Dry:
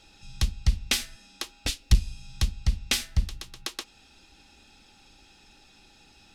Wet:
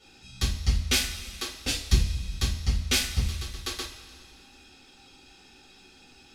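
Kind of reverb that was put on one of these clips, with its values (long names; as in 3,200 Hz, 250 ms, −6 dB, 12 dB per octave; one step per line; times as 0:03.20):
coupled-rooms reverb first 0.32 s, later 2.2 s, from −17 dB, DRR −10 dB
level −7.5 dB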